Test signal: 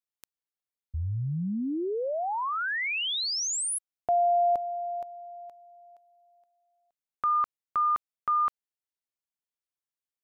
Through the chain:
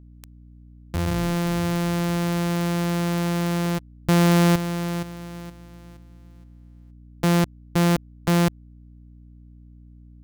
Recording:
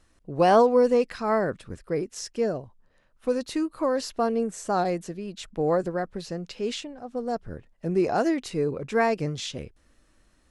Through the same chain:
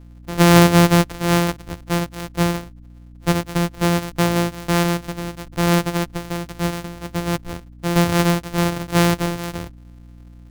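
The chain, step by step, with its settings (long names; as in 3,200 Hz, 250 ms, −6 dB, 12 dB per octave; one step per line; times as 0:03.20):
samples sorted by size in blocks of 256 samples
mains hum 60 Hz, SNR 22 dB
level +6.5 dB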